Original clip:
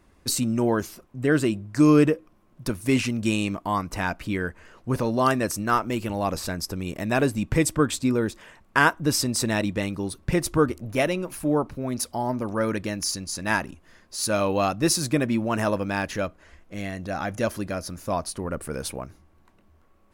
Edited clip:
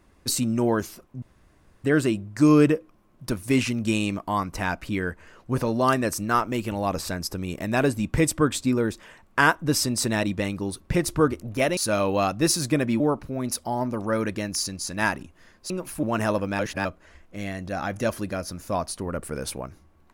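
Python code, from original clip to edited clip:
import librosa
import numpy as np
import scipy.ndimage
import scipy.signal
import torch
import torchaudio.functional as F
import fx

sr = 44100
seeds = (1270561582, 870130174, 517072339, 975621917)

y = fx.edit(x, sr, fx.insert_room_tone(at_s=1.22, length_s=0.62),
    fx.swap(start_s=11.15, length_s=0.33, other_s=14.18, other_length_s=1.23),
    fx.reverse_span(start_s=15.97, length_s=0.26), tone=tone)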